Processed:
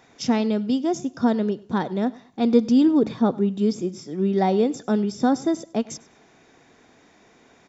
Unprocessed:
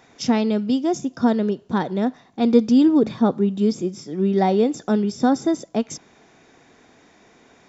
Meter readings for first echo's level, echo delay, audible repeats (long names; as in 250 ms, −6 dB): −22.0 dB, 100 ms, 2